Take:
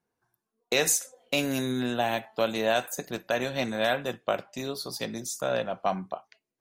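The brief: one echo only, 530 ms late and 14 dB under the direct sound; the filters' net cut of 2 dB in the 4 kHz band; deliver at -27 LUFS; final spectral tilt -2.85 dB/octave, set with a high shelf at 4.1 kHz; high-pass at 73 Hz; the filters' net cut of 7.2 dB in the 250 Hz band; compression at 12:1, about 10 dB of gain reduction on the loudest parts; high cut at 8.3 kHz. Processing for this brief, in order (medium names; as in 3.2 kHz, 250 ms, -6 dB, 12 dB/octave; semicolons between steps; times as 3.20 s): high-pass 73 Hz; low-pass 8.3 kHz; peaking EQ 250 Hz -8.5 dB; peaking EQ 4 kHz -4 dB; treble shelf 4.1 kHz +3.5 dB; compression 12:1, threshold -31 dBFS; delay 530 ms -14 dB; trim +10 dB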